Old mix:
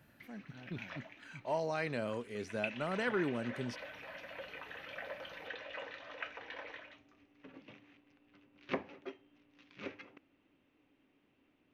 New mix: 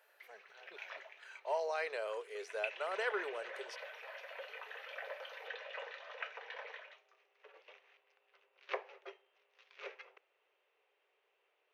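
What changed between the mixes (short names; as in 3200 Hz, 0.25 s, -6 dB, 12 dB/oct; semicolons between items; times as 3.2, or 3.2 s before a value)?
background: add bell 280 Hz -7.5 dB 0.27 oct; master: add elliptic high-pass 420 Hz, stop band 40 dB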